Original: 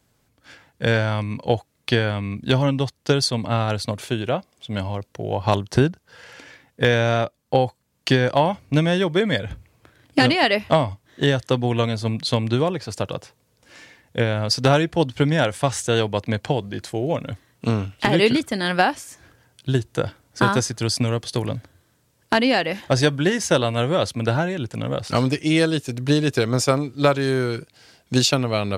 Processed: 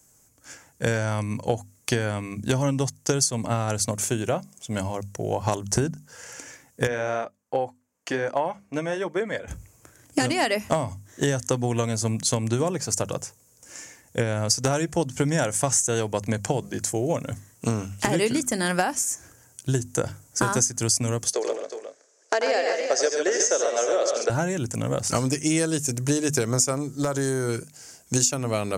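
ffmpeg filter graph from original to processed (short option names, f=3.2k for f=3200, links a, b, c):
-filter_complex "[0:a]asettb=1/sr,asplit=3[a][b][c];[a]atrim=end=6.874[d];[b]atrim=start=6.87:end=9.48,asetpts=PTS-STARTPTS,afade=t=in:d=0.004:c=qsin,afade=t=out:st=2.606:d=0.004:c=qsin,bass=f=250:g=-13,treble=f=4k:g=-15,flanger=delay=0.1:depth=4.3:regen=-61:speed=1.3:shape=sinusoidal[e];[c]atrim=start=9.476[f];[d][e]acrossfade=d=0.004:c1=hsin:c2=qsin[g];[g][f]acrossfade=d=0.004:c1=qsin:c2=hsin,asettb=1/sr,asplit=3[h][i][j];[h]atrim=end=21.334[k];[i]atrim=start=21.33:end=24.3,asetpts=PTS-STARTPTS,afade=t=in:d=0.004:c=qsin,afade=t=out:st=2.966:d=0.004:c=qsin,highpass=f=410:w=0.5412,highpass=f=410:w=1.3066,equalizer=f=430:t=q:w=4:g=7,equalizer=f=630:t=q:w=4:g=4,equalizer=f=960:t=q:w=4:g=-6,equalizer=f=2.9k:t=q:w=4:g=-4,lowpass=f=6.3k:w=0.5412,lowpass=f=6.3k:w=1.3066,aecho=1:1:88|137|364|393:0.398|0.447|0.282|0.106,atrim=end_sample=130977[l];[j]atrim=start=24.296[m];[k][l]acrossfade=d=0.004:c1=hsin:c2=qsin[n];[n][m]acrossfade=d=0.004:c1=qsin:c2=hsin,asettb=1/sr,asplit=3[o][p][q];[o]atrim=end=26.834[r];[p]atrim=start=26.83:end=27.49,asetpts=PTS-STARTPTS,afade=t=in:d=0.004:c=qsin,afade=t=out:st=0.656:d=0.004:c=qsin,equalizer=f=2.5k:w=5.9:g=-14.5,acompressor=threshold=-19dB:ratio=8:attack=3.2:release=140:knee=1:detection=peak,asoftclip=type=hard:threshold=-15.5dB[s];[q]atrim=start=27.486[t];[r][s]acrossfade=d=0.004:c1=hsin:c2=qsin[u];[u][t]acrossfade=d=0.004:c1=qsin:c2=hsin,highshelf=f=5.1k:t=q:w=3:g=10,bandreject=f=50:t=h:w=6,bandreject=f=100:t=h:w=6,bandreject=f=150:t=h:w=6,bandreject=f=200:t=h:w=6,bandreject=f=250:t=h:w=6,acompressor=threshold=-19dB:ratio=6"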